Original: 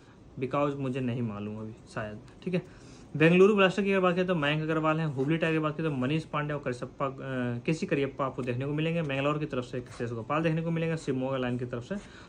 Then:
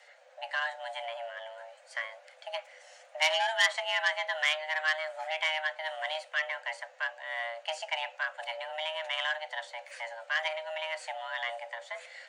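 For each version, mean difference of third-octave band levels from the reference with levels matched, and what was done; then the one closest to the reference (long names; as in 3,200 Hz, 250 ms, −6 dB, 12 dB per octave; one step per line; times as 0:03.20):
16.5 dB: low-shelf EQ 81 Hz +6 dB
frequency shifter +460 Hz
octave-band graphic EQ 500/1,000/2,000 Hz −7/−11/+9 dB
saturating transformer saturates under 3,500 Hz
level −1 dB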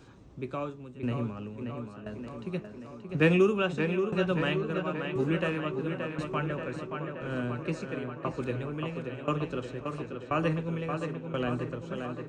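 4.5 dB: parametric band 63 Hz +2.5 dB 2 octaves
shaped tremolo saw down 0.97 Hz, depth 95%
on a send: tape delay 578 ms, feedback 74%, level −5 dB, low-pass 3,500 Hz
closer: second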